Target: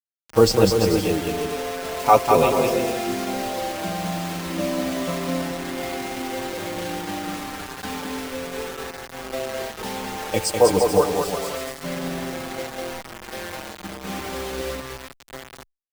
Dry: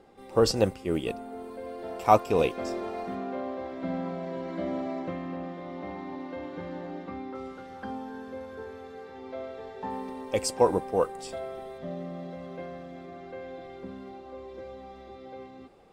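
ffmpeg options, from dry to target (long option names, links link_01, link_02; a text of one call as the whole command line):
ffmpeg -i in.wav -filter_complex "[0:a]aecho=1:1:200|340|438|506.6|554.6:0.631|0.398|0.251|0.158|0.1,asettb=1/sr,asplit=3[link_01][link_02][link_03];[link_01]atrim=end=14.074[link_04];[link_02]atrim=start=14.07:end=14.8,asetpts=PTS-STARTPTS,afade=type=in:duration=0.004:curve=qsin,afade=type=out:start_time=0.726:duration=0.004:curve=qsin,acontrast=37[link_05];[link_03]atrim=start=14.796[link_06];[link_04][link_05]acrossfade=duration=0.004:curve1=hsin:curve2=qsin[link_07];[link_07][link_06]acrossfade=duration=0.004:curve1=qsin:curve2=hsin,acrusher=bits=5:mix=0:aa=0.000001,asplit=2[link_08][link_09];[link_09]adelay=5.8,afreqshift=-0.31[link_10];[link_08][link_10]amix=inputs=2:normalize=1,volume=8.5dB" out.wav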